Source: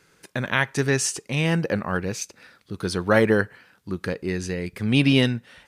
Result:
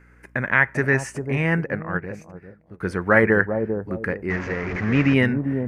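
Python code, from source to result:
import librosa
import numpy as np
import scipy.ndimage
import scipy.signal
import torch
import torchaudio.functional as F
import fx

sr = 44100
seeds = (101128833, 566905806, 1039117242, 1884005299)

y = fx.delta_mod(x, sr, bps=32000, step_db=-24.5, at=(4.3, 5.14))
y = fx.high_shelf_res(y, sr, hz=2700.0, db=-11.0, q=3.0)
y = fx.echo_bbd(y, sr, ms=396, stages=2048, feedback_pct=30, wet_db=-6.0)
y = fx.add_hum(y, sr, base_hz=60, snr_db=31)
y = fx.upward_expand(y, sr, threshold_db=-41.0, expansion=1.5, at=(1.63, 2.8), fade=0.02)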